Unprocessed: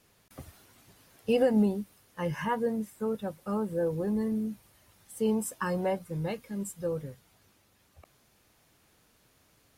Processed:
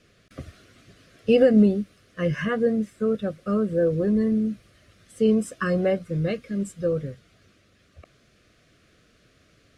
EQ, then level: Butterworth band-stop 890 Hz, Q 1.9; air absorption 65 m; high shelf 9700 Hz -7.5 dB; +8.0 dB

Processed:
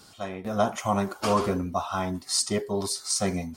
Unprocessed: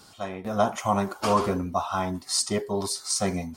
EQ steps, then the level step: bell 920 Hz -3 dB 0.77 oct; 0.0 dB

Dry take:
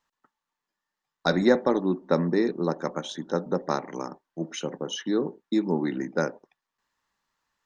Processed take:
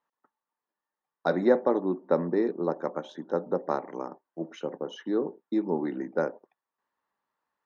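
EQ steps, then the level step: band-pass 580 Hz, Q 0.7; 0.0 dB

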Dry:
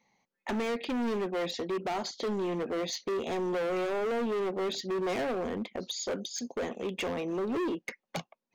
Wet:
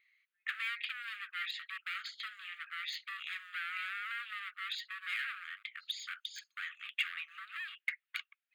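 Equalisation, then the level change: brick-wall FIR high-pass 1100 Hz; high shelf 2600 Hz -12 dB; fixed phaser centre 2500 Hz, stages 4; +10.0 dB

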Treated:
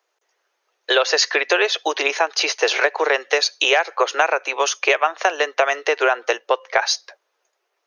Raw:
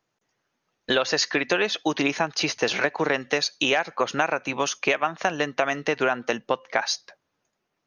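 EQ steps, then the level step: steep high-pass 380 Hz 48 dB/oct; +6.0 dB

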